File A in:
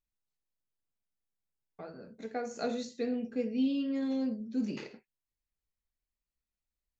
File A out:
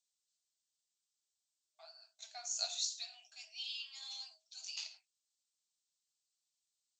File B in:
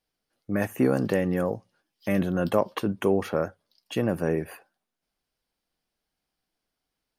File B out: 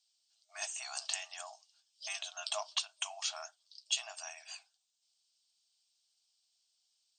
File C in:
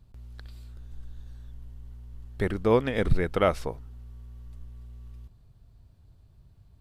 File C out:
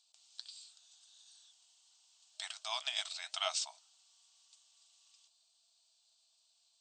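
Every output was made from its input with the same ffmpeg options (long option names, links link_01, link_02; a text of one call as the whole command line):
ffmpeg -i in.wav -af "aexciter=amount=13.3:drive=5.4:freq=2900,flanger=delay=1.2:depth=8.1:regen=-68:speed=1.4:shape=triangular,afftfilt=real='re*between(b*sr/4096,620,8600)':imag='im*between(b*sr/4096,620,8600)':win_size=4096:overlap=0.75,volume=-8dB" out.wav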